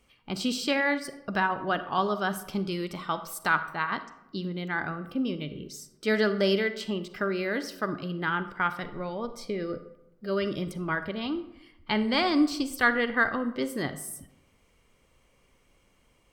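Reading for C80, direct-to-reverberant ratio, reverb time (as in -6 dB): 14.5 dB, 11.0 dB, 0.90 s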